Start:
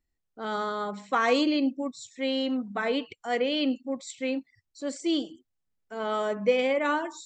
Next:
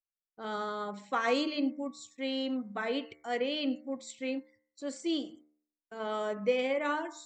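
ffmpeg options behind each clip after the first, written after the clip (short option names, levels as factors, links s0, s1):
-af "agate=range=0.0398:threshold=0.00282:ratio=16:detection=peak,bandreject=f=75.35:t=h:w=4,bandreject=f=150.7:t=h:w=4,bandreject=f=226.05:t=h:w=4,bandreject=f=301.4:t=h:w=4,bandreject=f=376.75:t=h:w=4,bandreject=f=452.1:t=h:w=4,bandreject=f=527.45:t=h:w=4,bandreject=f=602.8:t=h:w=4,bandreject=f=678.15:t=h:w=4,bandreject=f=753.5:t=h:w=4,bandreject=f=828.85:t=h:w=4,bandreject=f=904.2:t=h:w=4,bandreject=f=979.55:t=h:w=4,bandreject=f=1054.9:t=h:w=4,bandreject=f=1130.25:t=h:w=4,bandreject=f=1205.6:t=h:w=4,bandreject=f=1280.95:t=h:w=4,bandreject=f=1356.3:t=h:w=4,bandreject=f=1431.65:t=h:w=4,bandreject=f=1507:t=h:w=4,bandreject=f=1582.35:t=h:w=4,bandreject=f=1657.7:t=h:w=4,bandreject=f=1733.05:t=h:w=4,bandreject=f=1808.4:t=h:w=4,bandreject=f=1883.75:t=h:w=4,bandreject=f=1959.1:t=h:w=4,bandreject=f=2034.45:t=h:w=4,bandreject=f=2109.8:t=h:w=4,bandreject=f=2185.15:t=h:w=4,bandreject=f=2260.5:t=h:w=4,volume=0.562"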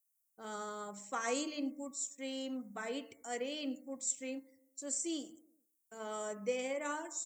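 -filter_complex "[0:a]acrossover=split=940[s0][s1];[s0]aecho=1:1:100|200|300|400:0.0708|0.0425|0.0255|0.0153[s2];[s1]aexciter=amount=14.5:drive=3:freq=6000[s3];[s2][s3]amix=inputs=2:normalize=0,volume=0.422"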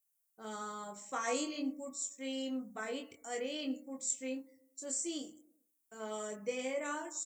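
-filter_complex "[0:a]asplit=2[s0][s1];[s1]adelay=23,volume=0.631[s2];[s0][s2]amix=inputs=2:normalize=0,volume=0.891"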